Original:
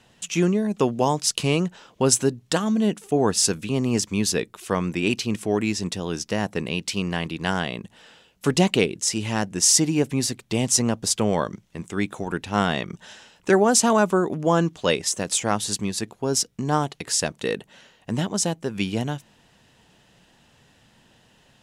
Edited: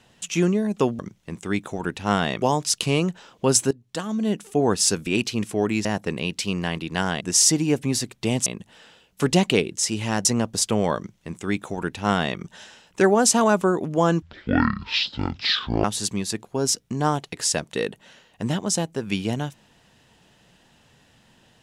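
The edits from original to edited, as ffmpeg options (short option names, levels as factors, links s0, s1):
-filter_complex "[0:a]asplit=11[s0][s1][s2][s3][s4][s5][s6][s7][s8][s9][s10];[s0]atrim=end=0.992[s11];[s1]atrim=start=11.458:end=12.892[s12];[s2]atrim=start=0.988:end=2.28,asetpts=PTS-STARTPTS,afade=t=out:st=1.288:d=0.004:c=hsin:silence=0.141254[s13];[s3]atrim=start=2.28:end=3.642,asetpts=PTS-STARTPTS,afade=t=in:d=0.77:silence=0.141254[s14];[s4]atrim=start=4.988:end=5.772[s15];[s5]atrim=start=6.338:end=7.702[s16];[s6]atrim=start=9.488:end=10.742[s17];[s7]atrim=start=7.698:end=9.492[s18];[s8]atrim=start=10.738:end=14.714[s19];[s9]atrim=start=14.71:end=15.52,asetpts=PTS-STARTPTS,asetrate=22050,aresample=44100[s20];[s10]atrim=start=15.516[s21];[s11][s12]acrossfade=d=0.004:c1=hsin:c2=hsin[s22];[s13][s14]concat=n=2:v=0:a=1[s23];[s22][s23]acrossfade=d=0.004:c1=hsin:c2=hsin[s24];[s24][s15]acrossfade=d=0.004:c1=hsin:c2=hsin[s25];[s25][s16]acrossfade=d=0.004:c1=hsin:c2=hsin[s26];[s26][s17]acrossfade=d=0.004:c1=hsin:c2=hsin[s27];[s27][s18]acrossfade=d=0.004:c1=hsin:c2=hsin[s28];[s28][s19]acrossfade=d=0.004:c1=hsin:c2=hsin[s29];[s29][s20]acrossfade=d=0.004:c1=hsin:c2=hsin[s30];[s30][s21]acrossfade=d=0.004:c1=hsin:c2=hsin"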